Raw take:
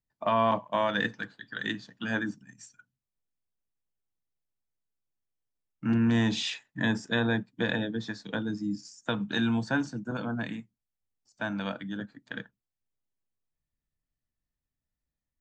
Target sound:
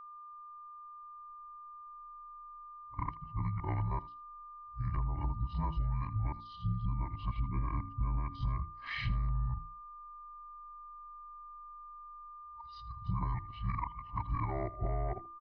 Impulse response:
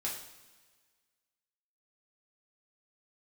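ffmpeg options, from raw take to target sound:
-af "areverse,highshelf=f=2000:g=-11.5,asetrate=28595,aresample=44100,atempo=1.54221,bandreject=f=60:t=h:w=6,bandreject=f=120:t=h:w=6,bandreject=f=180:t=h:w=6,bandreject=f=240:t=h:w=6,bandreject=f=300:t=h:w=6,bandreject=f=360:t=h:w=6,alimiter=limit=0.0668:level=0:latency=1:release=86,aecho=1:1:1:0.72,afreqshift=-23,asubboost=boost=5.5:cutoff=62,acompressor=threshold=0.0282:ratio=12,aecho=1:1:80:0.106,aeval=exprs='val(0)+0.00398*sin(2*PI*1200*n/s)':c=same,volume=1.12"

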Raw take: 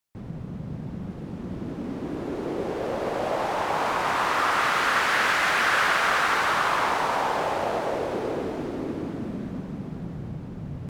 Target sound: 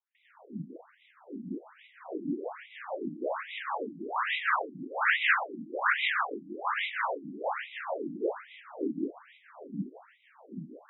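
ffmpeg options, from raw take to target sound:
-filter_complex "[0:a]asettb=1/sr,asplit=3[s0][s1][s2];[s0]atrim=end=4.064[s3];[s1]atrim=start=4.06:end=5.65,asetpts=PTS-STARTPTS,afade=t=in:d=0.004:c=qsin,afade=t=out:st=1.586:d=0.004:c=qsin,asplit=2[s4][s5];[s5]adelay=44,volume=0.473[s6];[s4][s6]amix=inputs=2:normalize=0,atrim=end_sample=70119[s7];[s2]atrim=start=5.646[s8];[s3][s7]acrossfade=d=0.004:c1=hsin:c2=qsin[s9];[s9][s8]acrossfade=d=0.004:c1=qsin:c2=hsin,acrossover=split=540|970[s10][s11][s12];[s11]asoftclip=type=hard:threshold=0.0141[s13];[s10][s13][s12]amix=inputs=3:normalize=0,acrossover=split=1000[s14][s15];[s14]aeval=exprs='val(0)*(1-0.7/2+0.7/2*cos(2*PI*5.2*n/s))':c=same[s16];[s15]aeval=exprs='val(0)*(1-0.7/2-0.7/2*cos(2*PI*5.2*n/s))':c=same[s17];[s16][s17]amix=inputs=2:normalize=0,asplit=2[s18][s19];[s19]aeval=exprs='sgn(val(0))*max(abs(val(0))-0.00531,0)':c=same,volume=0.562[s20];[s18][s20]amix=inputs=2:normalize=0,aresample=11025,aresample=44100,afftfilt=real='re*between(b*sr/1024,230*pow(2800/230,0.5+0.5*sin(2*PI*1.2*pts/sr))/1.41,230*pow(2800/230,0.5+0.5*sin(2*PI*1.2*pts/sr))*1.41)':imag='im*between(b*sr/1024,230*pow(2800/230,0.5+0.5*sin(2*PI*1.2*pts/sr))/1.41,230*pow(2800/230,0.5+0.5*sin(2*PI*1.2*pts/sr))*1.41)':win_size=1024:overlap=0.75"

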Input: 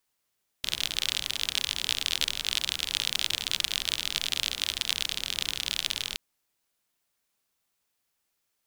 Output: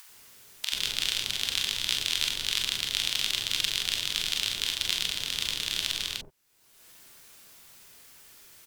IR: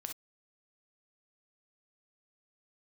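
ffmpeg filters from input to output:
-filter_complex "[0:a]acrossover=split=760[s0][s1];[s0]adelay=90[s2];[s2][s1]amix=inputs=2:normalize=0[s3];[1:a]atrim=start_sample=2205,asetrate=61740,aresample=44100[s4];[s3][s4]afir=irnorm=-1:irlink=0,acompressor=mode=upward:threshold=0.0126:ratio=2.5,volume=2"

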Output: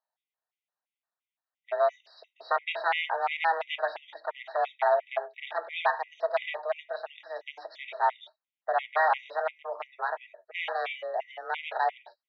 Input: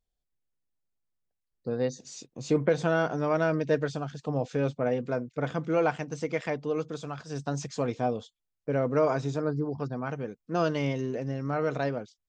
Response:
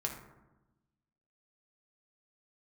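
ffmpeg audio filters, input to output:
-filter_complex "[0:a]aeval=exprs='0.075*(abs(mod(val(0)/0.075+3,4)-2)-1)':c=same,highpass=f=450:t=q:w=0.5412,highpass=f=450:t=q:w=1.307,lowpass=f=3500:t=q:w=0.5176,lowpass=f=3500:t=q:w=0.7071,lowpass=f=3500:t=q:w=1.932,afreqshift=170,asplit=2[s0][s1];[1:a]atrim=start_sample=2205,afade=t=out:st=0.22:d=0.01,atrim=end_sample=10143,atrim=end_sample=4410[s2];[s1][s2]afir=irnorm=-1:irlink=0,volume=0.631[s3];[s0][s3]amix=inputs=2:normalize=0,afftfilt=real='re*gt(sin(2*PI*2.9*pts/sr)*(1-2*mod(floor(b*sr/1024/1900),2)),0)':imag='im*gt(sin(2*PI*2.9*pts/sr)*(1-2*mod(floor(b*sr/1024/1900),2)),0)':win_size=1024:overlap=0.75,volume=1.33"

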